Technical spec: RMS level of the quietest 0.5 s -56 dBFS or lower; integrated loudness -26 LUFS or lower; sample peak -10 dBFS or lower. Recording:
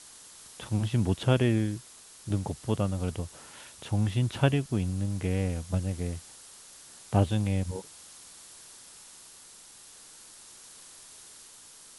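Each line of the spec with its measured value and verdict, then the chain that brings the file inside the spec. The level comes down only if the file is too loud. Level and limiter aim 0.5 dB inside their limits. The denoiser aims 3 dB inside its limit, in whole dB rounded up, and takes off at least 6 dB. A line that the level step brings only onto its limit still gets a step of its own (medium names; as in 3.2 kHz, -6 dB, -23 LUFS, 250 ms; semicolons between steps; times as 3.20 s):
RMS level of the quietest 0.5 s -51 dBFS: fail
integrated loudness -29.5 LUFS: pass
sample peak -9.0 dBFS: fail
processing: noise reduction 8 dB, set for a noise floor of -51 dBFS; peak limiter -10.5 dBFS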